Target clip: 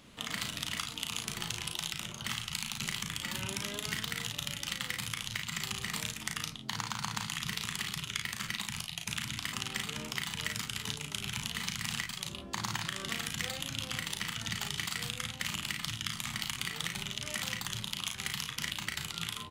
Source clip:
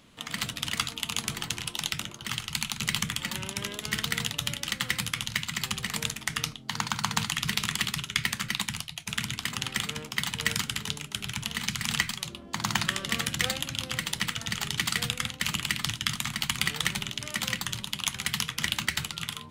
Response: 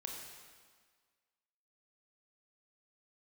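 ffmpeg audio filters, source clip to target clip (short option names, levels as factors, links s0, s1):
-af "acompressor=threshold=0.0224:ratio=6,aecho=1:1:36|54:0.562|0.299"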